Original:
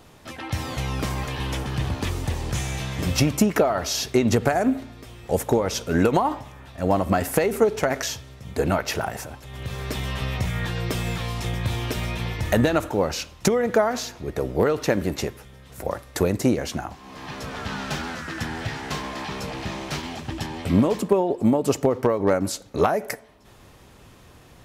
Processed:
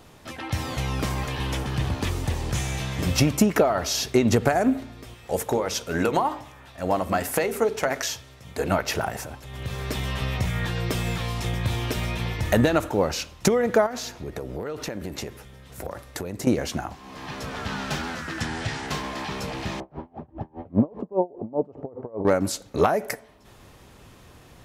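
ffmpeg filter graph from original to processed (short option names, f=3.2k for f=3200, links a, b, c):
-filter_complex "[0:a]asettb=1/sr,asplit=3[a][b][c];[a]atrim=end=5.144[d];[b]atrim=start=5.14:end=8.71,asetpts=PTS-STARTPTS,afade=t=in:d=0.004:c=qsin,afade=t=out:st=3.566:d=0.004:c=qsin,lowshelf=f=400:g=-6.5,bandreject=f=50:t=h:w=6,bandreject=f=100:t=h:w=6,bandreject=f=150:t=h:w=6,bandreject=f=200:t=h:w=6,bandreject=f=250:t=h:w=6,bandreject=f=300:t=h:w=6,bandreject=f=350:t=h:w=6,bandreject=f=400:t=h:w=6,bandreject=f=450:t=h:w=6,bandreject=f=500:t=h:w=6[e];[c]atrim=start=8.706[f];[d][e]acrossfade=d=0.004:c1=hsin:c2=qsin[g];[g][f]acrossfade=d=0.004:c1=qsin:c2=hsin,asettb=1/sr,asplit=3[h][i][j];[h]atrim=end=13.864[k];[i]atrim=start=13.86:end=16.47,asetpts=PTS-STARTPTS,afade=t=in:d=0.004:c=qsin,afade=t=out:st=2.606:d=0.004:c=qsin,bandreject=f=1.1k:w=29,acompressor=threshold=-28dB:ratio=6:attack=3.2:release=140:knee=1:detection=peak[l];[j]atrim=start=16.466[m];[k][l]acrossfade=d=0.004:c1=hsin:c2=qsin[n];[n][m]acrossfade=d=0.004:c1=qsin:c2=hsin,asettb=1/sr,asplit=3[o][p][q];[o]atrim=end=18.414[r];[p]atrim=start=18.41:end=18.87,asetpts=PTS-STARTPTS,afade=t=in:d=0.004:c=qsin,afade=t=out:st=0.456:d=0.004:c=qsin,lowpass=f=9.5k:w=0.5412,lowpass=f=9.5k:w=1.3066,highshelf=f=5.5k:g=7[s];[q]atrim=start=18.866[t];[r][s]acrossfade=d=0.004:c1=hsin:c2=qsin[u];[u][t]acrossfade=d=0.004:c1=qsin:c2=hsin,asettb=1/sr,asplit=3[v][w][x];[v]atrim=end=19.804[y];[w]atrim=start=19.8:end=22.25,asetpts=PTS-STARTPTS,afade=t=in:d=0.004:c=qsin,afade=t=out:st=2.446:d=0.004:c=qsin,lowpass=f=720:t=q:w=1.5,aeval=exprs='val(0)*pow(10,-29*(0.5-0.5*cos(2*PI*5*n/s))/20)':c=same[z];[x]atrim=start=22.246[aa];[y][z]acrossfade=d=0.004:c1=hsin:c2=qsin[ab];[ab][aa]acrossfade=d=0.004:c1=qsin:c2=hsin"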